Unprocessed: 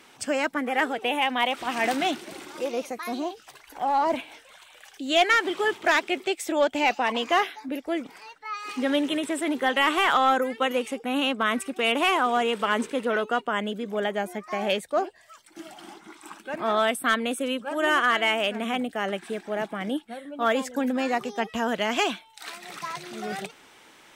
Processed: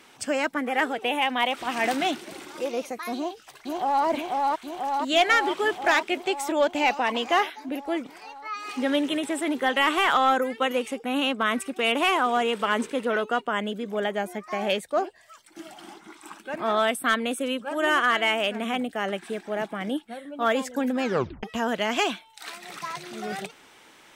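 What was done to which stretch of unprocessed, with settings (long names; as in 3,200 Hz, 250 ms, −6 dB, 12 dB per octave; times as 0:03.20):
0:03.16–0:04.06: delay throw 490 ms, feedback 75%, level −1.5 dB
0:21.03: tape stop 0.40 s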